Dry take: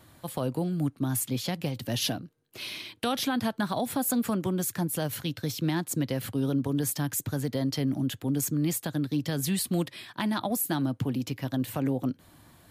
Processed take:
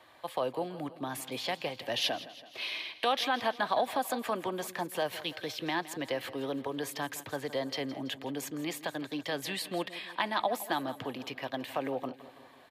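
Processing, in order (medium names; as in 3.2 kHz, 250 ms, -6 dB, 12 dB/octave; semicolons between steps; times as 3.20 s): three-band isolator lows -23 dB, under 440 Hz, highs -17 dB, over 4 kHz; band-stop 1.4 kHz, Q 6.9; on a send: feedback delay 165 ms, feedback 58%, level -16 dB; on the sum: trim +4 dB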